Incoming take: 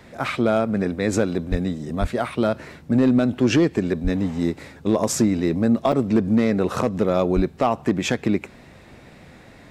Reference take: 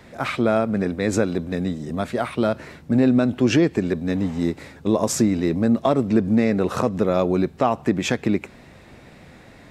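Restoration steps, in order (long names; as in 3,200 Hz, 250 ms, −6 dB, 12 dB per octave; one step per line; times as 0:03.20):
clipped peaks rebuilt −10 dBFS
high-pass at the plosives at 0:01.50/0:02.00/0:04.03/0:07.35
repair the gap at 0:05.92, 5.2 ms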